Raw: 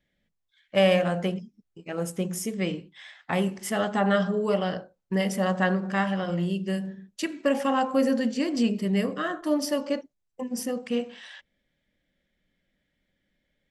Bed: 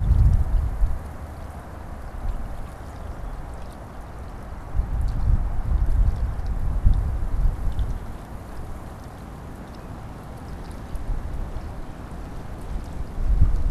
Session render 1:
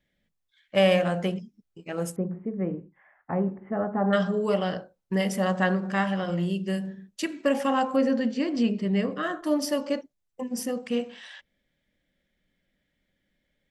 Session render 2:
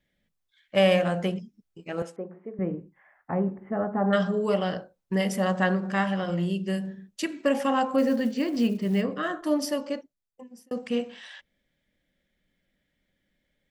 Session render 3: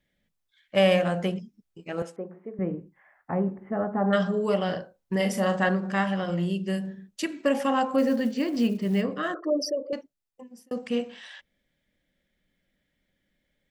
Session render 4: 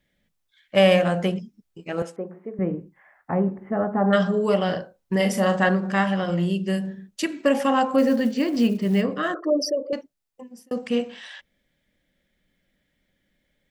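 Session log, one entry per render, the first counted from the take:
2.16–4.13 Gaussian blur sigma 6.4 samples; 7.96–9.23 air absorption 110 m
2.02–2.59 BPF 410–3900 Hz; 7.98–9.02 short-mantissa float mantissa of 4-bit; 9.54–10.71 fade out
4.65–5.69 doubler 40 ms -7.5 dB; 9.34–9.93 formant sharpening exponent 3
gain +4 dB

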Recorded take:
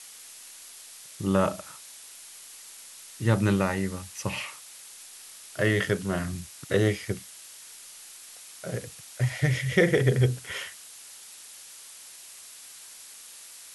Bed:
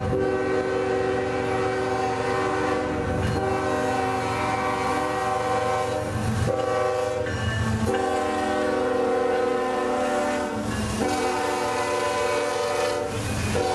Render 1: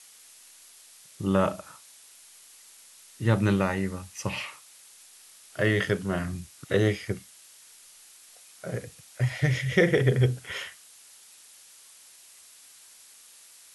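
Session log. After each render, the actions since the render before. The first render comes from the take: noise print and reduce 6 dB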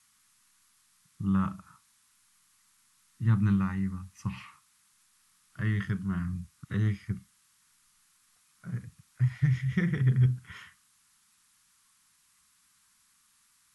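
EQ curve 200 Hz 0 dB, 570 Hz -29 dB, 1100 Hz -5 dB, 2800 Hz -15 dB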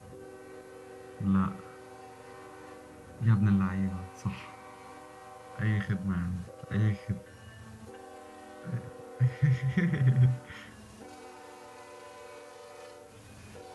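add bed -24 dB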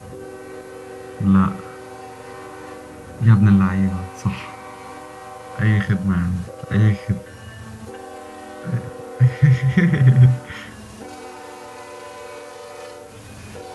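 gain +12 dB

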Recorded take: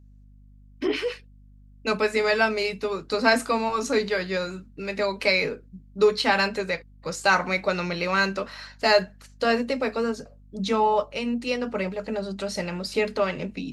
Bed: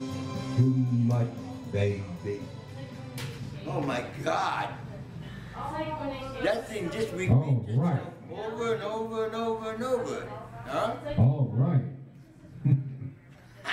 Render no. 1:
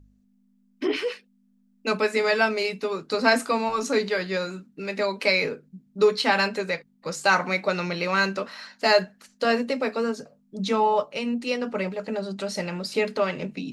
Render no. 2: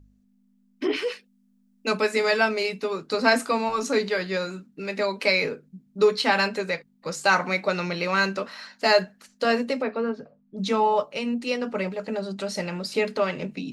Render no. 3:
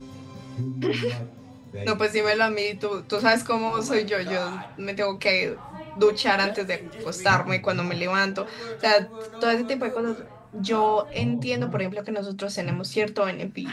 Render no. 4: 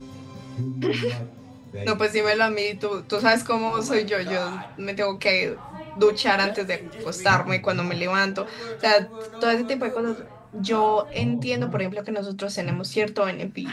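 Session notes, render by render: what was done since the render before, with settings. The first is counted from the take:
de-hum 50 Hz, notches 3
1.02–2.37 tone controls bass 0 dB, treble +3 dB; 9.82–10.58 air absorption 340 m
add bed -7 dB
gain +1 dB

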